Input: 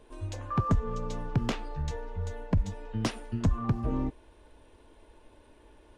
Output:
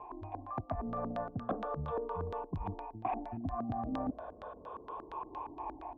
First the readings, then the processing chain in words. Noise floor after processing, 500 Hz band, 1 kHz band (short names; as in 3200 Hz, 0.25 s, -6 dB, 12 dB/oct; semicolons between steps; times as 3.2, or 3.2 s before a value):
-54 dBFS, -0.5 dB, +1.0 dB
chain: moving spectral ripple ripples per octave 0.7, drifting -0.36 Hz, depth 13 dB; dynamic EQ 890 Hz, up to -5 dB, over -58 dBFS, Q 7.6; in parallel at +1 dB: limiter -23.5 dBFS, peak gain reduction 9 dB; on the sum: vocal tract filter a; LFO low-pass square 4.3 Hz 290–3500 Hz; reverse; compressor 12:1, threshold -56 dBFS, peak gain reduction 24 dB; reverse; HPF 47 Hz; bell 1600 Hz +8 dB 0.43 oct; AGC gain up to 5.5 dB; gain +17 dB